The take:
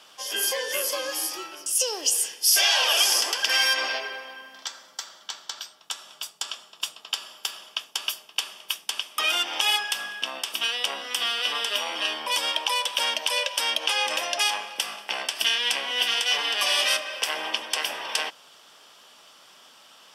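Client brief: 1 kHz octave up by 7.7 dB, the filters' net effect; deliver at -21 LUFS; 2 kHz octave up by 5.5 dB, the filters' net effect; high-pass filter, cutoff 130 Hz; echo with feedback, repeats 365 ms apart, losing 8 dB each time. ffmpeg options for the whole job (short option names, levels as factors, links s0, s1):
-af "highpass=130,equalizer=f=1000:t=o:g=8,equalizer=f=2000:t=o:g=5,aecho=1:1:365|730|1095|1460|1825:0.398|0.159|0.0637|0.0255|0.0102,volume=0.944"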